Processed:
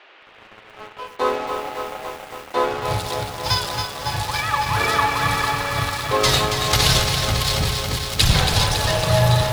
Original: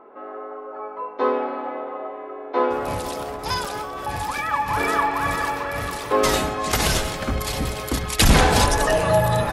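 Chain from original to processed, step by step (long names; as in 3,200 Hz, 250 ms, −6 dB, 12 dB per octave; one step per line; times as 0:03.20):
octave-band graphic EQ 125/250/4,000 Hz +12/−9/+10 dB
automatic gain control gain up to 4 dB
dead-zone distortion −29 dBFS
noise in a band 340–3,000 Hz −48 dBFS
on a send at −14 dB: convolution reverb RT60 0.45 s, pre-delay 73 ms
on the sum: feedback echo at a low word length 277 ms, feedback 80%, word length 6 bits, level −6.5 dB
level −1 dB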